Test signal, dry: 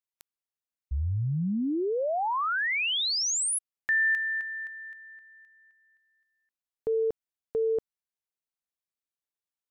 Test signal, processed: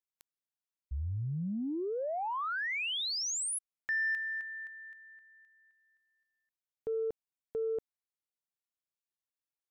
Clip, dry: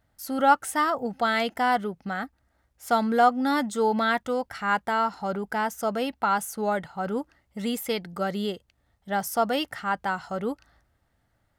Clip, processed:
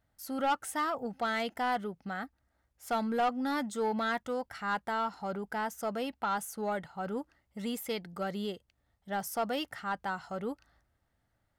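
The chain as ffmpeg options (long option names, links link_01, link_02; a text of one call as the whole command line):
ffmpeg -i in.wav -af "asoftclip=type=tanh:threshold=-16.5dB,volume=-6.5dB" out.wav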